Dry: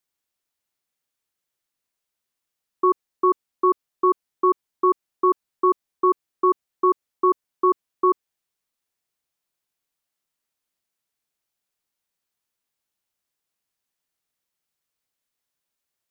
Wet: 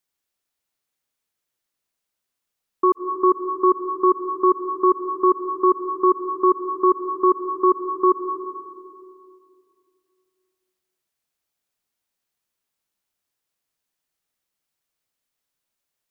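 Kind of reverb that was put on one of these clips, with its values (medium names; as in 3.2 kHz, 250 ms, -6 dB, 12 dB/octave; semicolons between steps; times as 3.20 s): algorithmic reverb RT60 2.4 s, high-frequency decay 0.3×, pre-delay 115 ms, DRR 7.5 dB; trim +1 dB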